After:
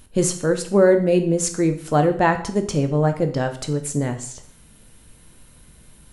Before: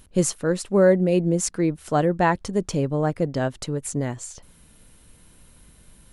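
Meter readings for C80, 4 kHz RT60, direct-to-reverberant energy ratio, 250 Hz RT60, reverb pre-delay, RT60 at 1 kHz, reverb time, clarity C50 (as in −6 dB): 15.0 dB, 0.55 s, 6.5 dB, 0.60 s, 5 ms, 0.60 s, 0.60 s, 11.5 dB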